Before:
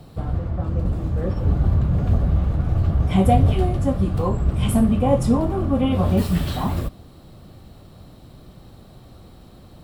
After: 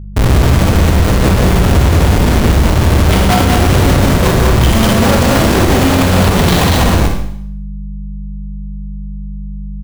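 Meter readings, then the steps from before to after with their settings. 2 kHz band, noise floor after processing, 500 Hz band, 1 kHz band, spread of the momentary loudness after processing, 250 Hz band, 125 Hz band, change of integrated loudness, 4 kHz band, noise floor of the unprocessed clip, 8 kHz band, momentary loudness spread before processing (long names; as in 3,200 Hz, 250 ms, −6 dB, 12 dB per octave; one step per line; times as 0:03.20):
+23.0 dB, −23 dBFS, +11.0 dB, +12.0 dB, 17 LU, +9.0 dB, +9.5 dB, +10.0 dB, +20.0 dB, −46 dBFS, +20.0 dB, 8 LU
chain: flat-topped bell 3,100 Hz +8.5 dB
comparator with hysteresis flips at −27.5 dBFS
hum with harmonics 50 Hz, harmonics 4, −38 dBFS −7 dB per octave
loudspeakers that aren't time-aligned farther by 46 metres −10 dB, 67 metres −2 dB, 87 metres −11 dB
four-comb reverb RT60 0.68 s, combs from 33 ms, DRR 3.5 dB
boost into a limiter +12 dB
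level −1 dB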